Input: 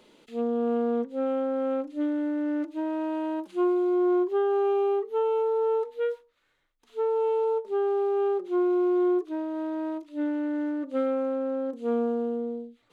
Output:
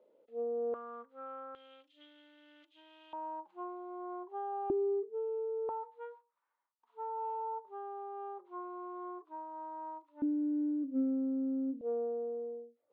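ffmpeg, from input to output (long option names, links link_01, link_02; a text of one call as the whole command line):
ffmpeg -i in.wav -af "asetnsamples=nb_out_samples=441:pad=0,asendcmd='0.74 bandpass f 1200;1.55 bandpass f 3200;3.13 bandpass f 880;4.7 bandpass f 340;5.69 bandpass f 960;10.22 bandpass f 270;11.81 bandpass f 550',bandpass=frequency=540:width_type=q:width=6.3:csg=0" out.wav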